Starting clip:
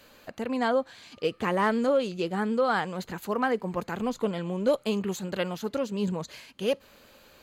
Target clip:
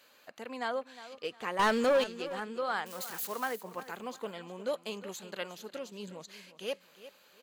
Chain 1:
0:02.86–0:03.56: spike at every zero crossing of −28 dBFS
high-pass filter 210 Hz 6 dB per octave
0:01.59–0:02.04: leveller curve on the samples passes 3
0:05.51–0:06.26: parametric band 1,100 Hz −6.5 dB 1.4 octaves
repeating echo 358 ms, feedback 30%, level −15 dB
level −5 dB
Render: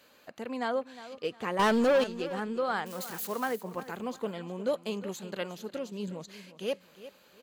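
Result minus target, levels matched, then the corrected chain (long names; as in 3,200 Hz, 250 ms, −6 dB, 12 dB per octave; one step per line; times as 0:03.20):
250 Hz band +4.0 dB
0:02.86–0:03.56: spike at every zero crossing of −28 dBFS
high-pass filter 750 Hz 6 dB per octave
0:01.59–0:02.04: leveller curve on the samples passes 3
0:05.51–0:06.26: parametric band 1,100 Hz −6.5 dB 1.4 octaves
repeating echo 358 ms, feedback 30%, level −15 dB
level −5 dB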